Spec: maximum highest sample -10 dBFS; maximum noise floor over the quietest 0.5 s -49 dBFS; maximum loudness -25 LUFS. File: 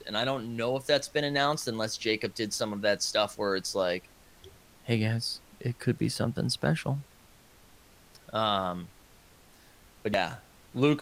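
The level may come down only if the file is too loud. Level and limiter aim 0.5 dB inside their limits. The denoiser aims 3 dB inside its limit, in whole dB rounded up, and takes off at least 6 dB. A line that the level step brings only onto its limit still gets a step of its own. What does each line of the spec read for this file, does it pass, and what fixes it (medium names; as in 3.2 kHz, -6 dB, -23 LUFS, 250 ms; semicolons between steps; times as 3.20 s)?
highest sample -12.0 dBFS: pass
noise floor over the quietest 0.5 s -57 dBFS: pass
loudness -30.0 LUFS: pass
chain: none needed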